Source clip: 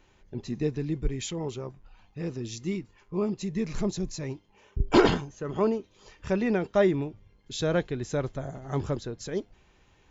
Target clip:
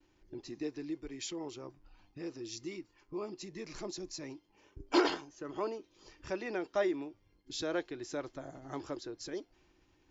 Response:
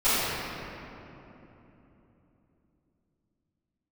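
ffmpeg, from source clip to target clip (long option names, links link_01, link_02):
-filter_complex "[0:a]agate=range=-33dB:threshold=-57dB:ratio=3:detection=peak,superequalizer=6b=3.55:14b=1.78,acrossover=split=440|960[link_01][link_02][link_03];[link_01]acompressor=threshold=-43dB:ratio=5[link_04];[link_04][link_02][link_03]amix=inputs=3:normalize=0,volume=-6.5dB"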